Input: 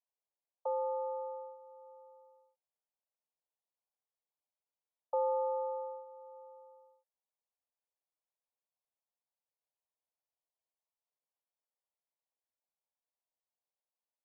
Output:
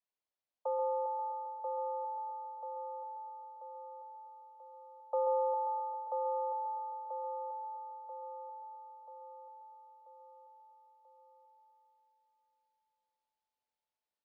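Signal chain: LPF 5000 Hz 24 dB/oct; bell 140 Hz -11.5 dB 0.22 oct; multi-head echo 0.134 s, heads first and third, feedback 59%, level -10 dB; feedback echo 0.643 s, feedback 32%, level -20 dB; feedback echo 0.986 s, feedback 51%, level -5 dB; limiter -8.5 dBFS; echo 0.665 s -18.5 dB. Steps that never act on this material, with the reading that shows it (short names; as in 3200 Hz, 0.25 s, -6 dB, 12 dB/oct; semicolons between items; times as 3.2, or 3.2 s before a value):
LPF 5000 Hz: input band ends at 1300 Hz; bell 140 Hz: input band starts at 480 Hz; limiter -8.5 dBFS: input peak -24.5 dBFS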